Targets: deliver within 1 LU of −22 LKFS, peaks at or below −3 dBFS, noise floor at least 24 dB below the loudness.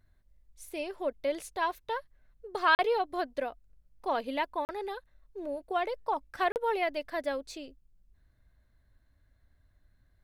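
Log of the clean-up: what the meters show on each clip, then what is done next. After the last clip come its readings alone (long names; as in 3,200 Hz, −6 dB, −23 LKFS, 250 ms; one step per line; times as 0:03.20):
number of dropouts 3; longest dropout 39 ms; integrated loudness −32.5 LKFS; sample peak −11.5 dBFS; target loudness −22.0 LKFS
→ repair the gap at 0:02.75/0:04.65/0:06.52, 39 ms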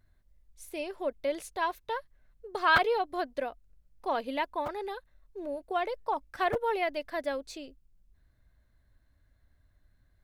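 number of dropouts 0; integrated loudness −32.0 LKFS; sample peak −11.5 dBFS; target loudness −22.0 LKFS
→ level +10 dB
brickwall limiter −3 dBFS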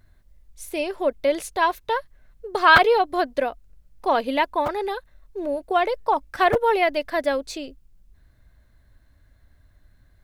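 integrated loudness −22.0 LKFS; sample peak −3.0 dBFS; background noise floor −58 dBFS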